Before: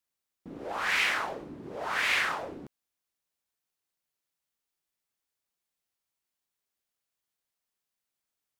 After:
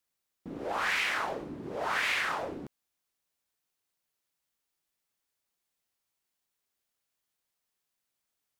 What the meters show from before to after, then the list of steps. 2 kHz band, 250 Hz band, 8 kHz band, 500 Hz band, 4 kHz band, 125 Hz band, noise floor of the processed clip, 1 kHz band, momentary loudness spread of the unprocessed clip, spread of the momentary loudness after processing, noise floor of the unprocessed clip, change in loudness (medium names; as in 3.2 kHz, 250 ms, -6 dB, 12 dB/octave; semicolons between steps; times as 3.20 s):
-2.0 dB, +2.0 dB, -2.5 dB, +1.5 dB, -2.5 dB, +2.0 dB, -84 dBFS, 0.0 dB, 17 LU, 17 LU, under -85 dBFS, -2.5 dB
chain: compression, threshold -29 dBFS, peak gain reduction 7 dB; trim +2.5 dB